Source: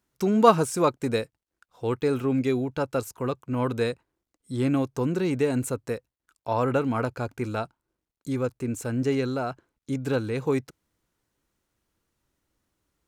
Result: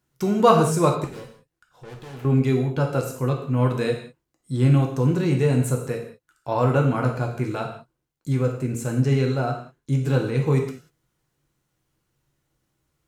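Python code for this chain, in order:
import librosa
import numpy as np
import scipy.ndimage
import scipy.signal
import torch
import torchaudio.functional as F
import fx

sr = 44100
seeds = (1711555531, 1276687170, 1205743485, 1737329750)

y = fx.peak_eq(x, sr, hz=150.0, db=10.0, octaves=0.43)
y = fx.tube_stage(y, sr, drive_db=40.0, bias=0.35, at=(1.04, 2.25))
y = fx.rev_gated(y, sr, seeds[0], gate_ms=220, shape='falling', drr_db=1.0)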